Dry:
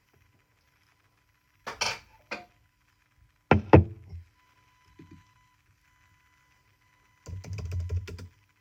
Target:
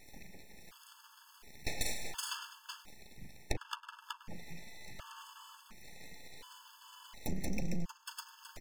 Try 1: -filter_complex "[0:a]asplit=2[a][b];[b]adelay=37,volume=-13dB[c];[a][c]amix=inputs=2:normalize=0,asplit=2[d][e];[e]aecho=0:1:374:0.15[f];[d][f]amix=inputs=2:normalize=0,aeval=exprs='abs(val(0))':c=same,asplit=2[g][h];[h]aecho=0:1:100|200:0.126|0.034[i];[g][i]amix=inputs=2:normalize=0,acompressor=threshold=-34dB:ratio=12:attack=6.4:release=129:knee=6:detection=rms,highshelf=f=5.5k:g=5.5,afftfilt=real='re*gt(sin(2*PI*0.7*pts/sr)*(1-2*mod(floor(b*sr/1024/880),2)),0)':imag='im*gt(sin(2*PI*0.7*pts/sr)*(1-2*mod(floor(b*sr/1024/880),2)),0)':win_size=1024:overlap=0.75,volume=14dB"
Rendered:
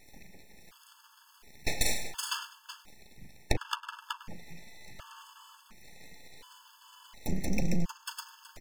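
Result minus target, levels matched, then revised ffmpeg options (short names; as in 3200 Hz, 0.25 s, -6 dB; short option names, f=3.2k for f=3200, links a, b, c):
compressor: peak gain reduction -8 dB
-filter_complex "[0:a]asplit=2[a][b];[b]adelay=37,volume=-13dB[c];[a][c]amix=inputs=2:normalize=0,asplit=2[d][e];[e]aecho=0:1:374:0.15[f];[d][f]amix=inputs=2:normalize=0,aeval=exprs='abs(val(0))':c=same,asplit=2[g][h];[h]aecho=0:1:100|200:0.126|0.034[i];[g][i]amix=inputs=2:normalize=0,acompressor=threshold=-42.5dB:ratio=12:attack=6.4:release=129:knee=6:detection=rms,highshelf=f=5.5k:g=5.5,afftfilt=real='re*gt(sin(2*PI*0.7*pts/sr)*(1-2*mod(floor(b*sr/1024/880),2)),0)':imag='im*gt(sin(2*PI*0.7*pts/sr)*(1-2*mod(floor(b*sr/1024/880),2)),0)':win_size=1024:overlap=0.75,volume=14dB"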